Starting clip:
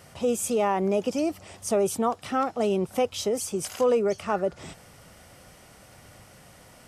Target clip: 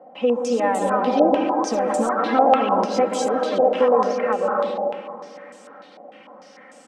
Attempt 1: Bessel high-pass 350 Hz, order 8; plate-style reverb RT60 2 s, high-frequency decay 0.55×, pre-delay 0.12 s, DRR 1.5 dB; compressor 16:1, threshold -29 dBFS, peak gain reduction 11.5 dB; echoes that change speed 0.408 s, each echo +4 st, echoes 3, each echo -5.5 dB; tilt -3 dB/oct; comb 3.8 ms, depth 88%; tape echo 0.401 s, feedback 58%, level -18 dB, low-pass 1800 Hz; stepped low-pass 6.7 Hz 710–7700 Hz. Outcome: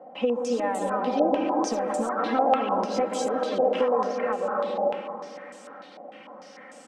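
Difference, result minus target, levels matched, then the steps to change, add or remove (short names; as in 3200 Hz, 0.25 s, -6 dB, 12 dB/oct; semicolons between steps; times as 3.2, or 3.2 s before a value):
compressor: peak gain reduction +7 dB
change: compressor 16:1, threshold -21.5 dBFS, peak gain reduction 4 dB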